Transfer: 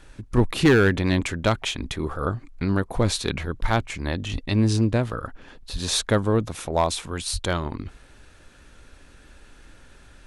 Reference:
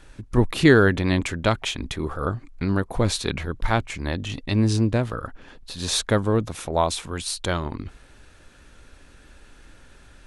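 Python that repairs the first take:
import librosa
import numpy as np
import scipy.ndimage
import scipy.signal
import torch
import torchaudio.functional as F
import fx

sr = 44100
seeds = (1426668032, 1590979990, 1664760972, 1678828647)

y = fx.fix_declip(x, sr, threshold_db=-11.0)
y = fx.highpass(y, sr, hz=140.0, slope=24, at=(4.32, 4.44), fade=0.02)
y = fx.highpass(y, sr, hz=140.0, slope=24, at=(5.72, 5.84), fade=0.02)
y = fx.highpass(y, sr, hz=140.0, slope=24, at=(7.32, 7.44), fade=0.02)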